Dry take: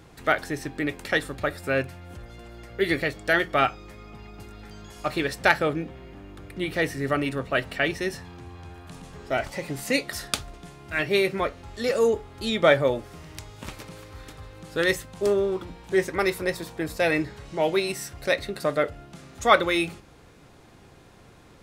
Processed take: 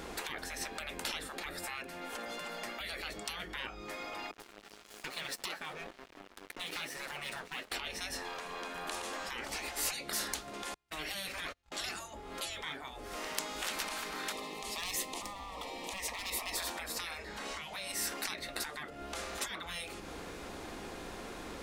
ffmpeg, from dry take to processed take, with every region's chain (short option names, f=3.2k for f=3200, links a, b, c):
-filter_complex "[0:a]asettb=1/sr,asplit=3[a][b][c];[a]atrim=end=4.314[d];[b]atrim=start=4.31:end=7.72,asetpts=PTS-STARTPTS,afade=t=in:d=0.004:c=qsin,afade=t=out:st=3.406:d=0.004:c=qsin,highpass=260,flanger=delay=6.1:depth=6:regen=34:speed=1.1:shape=triangular,aeval=exprs='sgn(val(0))*max(abs(val(0))-0.00398,0)':c=same[e];[c]atrim=start=7.716[f];[d][e]acrossfade=d=0.004:c1=hsin:c2=qsin[g];[g][f]acrossfade=d=0.004:c1=qsin:c2=hsin,asettb=1/sr,asplit=3[h][i][j];[h]atrim=end=10.744[k];[i]atrim=start=10.74:end=11.72,asetpts=PTS-STARTPTS,afade=t=in:d=0.004:c=qsin,afade=t=out:st=0.976:d=0.004:c=qsin,agate=range=-38dB:threshold=-37dB:ratio=16:release=100:detection=peak,equalizer=f=290:w=0.35:g=-14,acompressor=threshold=-33dB:ratio=2:attack=3.2:release=140:knee=1:detection=peak[l];[j]atrim=start=11.716[m];[k][l]acrossfade=d=0.004:c1=hsin:c2=qsin[n];[n][m]acrossfade=d=0.004:c1=qsin:c2=hsin,asettb=1/sr,asplit=3[o][p][q];[o]atrim=end=14.324[r];[p]atrim=start=14.32:end=16.57,asetpts=PTS-STARTPTS,afade=t=in:d=0.004:c=qsin,afade=t=out:st=2.246:d=0.004:c=qsin,acompressor=threshold=-25dB:ratio=5:attack=3.2:release=140:knee=1:detection=peak,volume=27.5dB,asoftclip=hard,volume=-27.5dB,asuperstop=centerf=1500:order=4:qfactor=2.1[s];[q]atrim=start=16.566[t];[r][s]acrossfade=d=0.004:c1=hsin:c2=qsin[u];[u][t]acrossfade=d=0.004:c1=qsin:c2=hsin,acompressor=threshold=-35dB:ratio=16,afftfilt=real='re*lt(hypot(re,im),0.0178)':imag='im*lt(hypot(re,im),0.0178)':win_size=1024:overlap=0.75,equalizer=f=120:t=o:w=0.66:g=-12,volume=9.5dB"